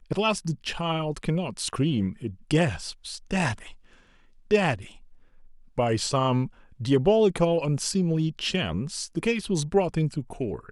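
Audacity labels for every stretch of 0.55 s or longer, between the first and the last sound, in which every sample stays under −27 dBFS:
3.530000	4.510000	silence
4.750000	5.780000	silence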